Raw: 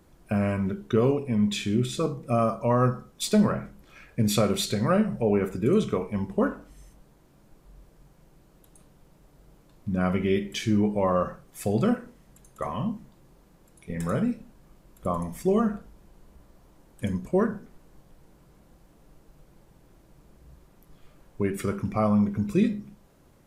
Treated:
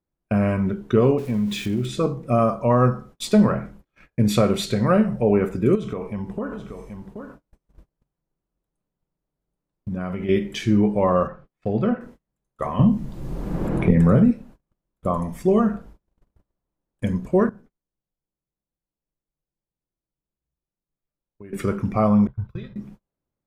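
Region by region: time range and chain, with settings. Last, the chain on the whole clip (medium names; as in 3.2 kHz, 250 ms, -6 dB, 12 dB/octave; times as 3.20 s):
1.18–1.86 s: zero-crossing glitches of -29.5 dBFS + treble shelf 7.2 kHz -5.5 dB + compression 4:1, threshold -24 dBFS
5.75–10.29 s: compression 4:1, threshold -30 dBFS + delay 779 ms -8 dB
11.27–12.01 s: low-pass 3.1 kHz + feedback comb 75 Hz, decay 0.27 s, mix 40%
12.79–14.31 s: bass shelf 490 Hz +10 dB + three bands compressed up and down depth 100%
17.49–21.53 s: gate -44 dBFS, range -9 dB + compression 2.5:1, threshold -52 dBFS
22.27–22.76 s: gate -31 dBFS, range -22 dB + FFT filter 130 Hz 0 dB, 220 Hz -26 dB, 400 Hz -18 dB, 950 Hz -5 dB, 1.5 kHz -5 dB, 2.3 kHz -16 dB, 3.5 kHz -7 dB, 8.4 kHz -30 dB, 13 kHz -14 dB
whole clip: gate -47 dBFS, range -32 dB; treble shelf 3.7 kHz -8.5 dB; trim +5 dB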